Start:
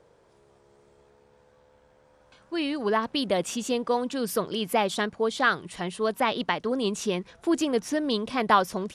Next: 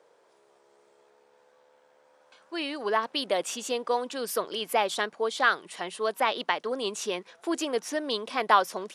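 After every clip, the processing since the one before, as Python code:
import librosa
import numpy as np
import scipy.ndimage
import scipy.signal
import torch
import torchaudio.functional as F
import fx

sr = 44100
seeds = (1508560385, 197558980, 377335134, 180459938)

y = scipy.signal.sosfilt(scipy.signal.butter(2, 430.0, 'highpass', fs=sr, output='sos'), x)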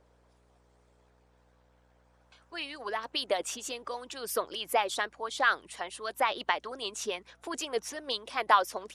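y = fx.hpss(x, sr, part='harmonic', gain_db=-12)
y = fx.add_hum(y, sr, base_hz=60, snr_db=33)
y = F.gain(torch.from_numpy(y), -1.0).numpy()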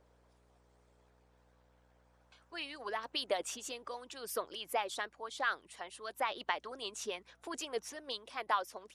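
y = fx.rider(x, sr, range_db=5, speed_s=2.0)
y = F.gain(torch.from_numpy(y), -8.0).numpy()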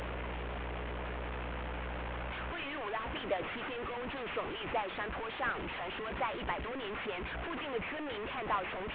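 y = fx.delta_mod(x, sr, bps=16000, step_db=-33.0)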